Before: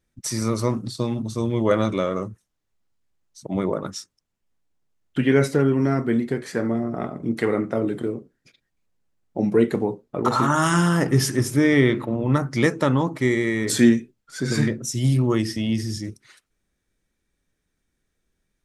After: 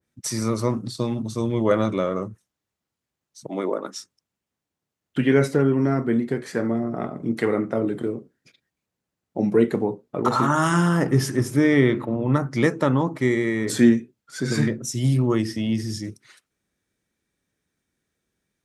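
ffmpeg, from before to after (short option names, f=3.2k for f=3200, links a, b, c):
-filter_complex "[0:a]asettb=1/sr,asplit=3[a][b][c];[a]atrim=end=3.494[d];[b]atrim=start=3.49:end=3.97,asetpts=PTS-STARTPTS,afade=t=in:d=0.004:c=qsin,afade=t=out:st=0.476:d=0.004:c=qsin,highpass=f=250:w=0.5412,highpass=f=250:w=1.3066[e];[c]atrim=start=3.966[f];[d][e]acrossfade=d=0.004:c1=hsin:c2=qsin[g];[g][f]acrossfade=d=0.004:c1=qsin:c2=hsin,highpass=88,adynamicequalizer=threshold=0.0126:dfrequency=2000:dqfactor=0.7:tfrequency=2000:tqfactor=0.7:attack=5:release=100:ratio=0.375:range=3:mode=cutabove:tftype=highshelf"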